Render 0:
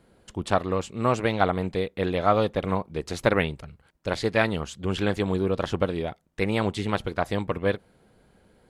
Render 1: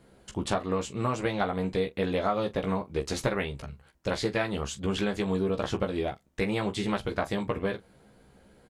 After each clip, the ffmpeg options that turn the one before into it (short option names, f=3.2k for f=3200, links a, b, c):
-filter_complex "[0:a]equalizer=f=6.6k:w=1.5:g=2.5,acompressor=threshold=-25dB:ratio=6,asplit=2[a][b];[b]aecho=0:1:15|43:0.596|0.178[c];[a][c]amix=inputs=2:normalize=0"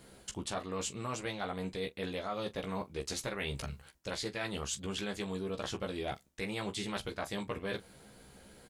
-af "highshelf=f=2.6k:g=11,areverse,acompressor=threshold=-34dB:ratio=10,areverse"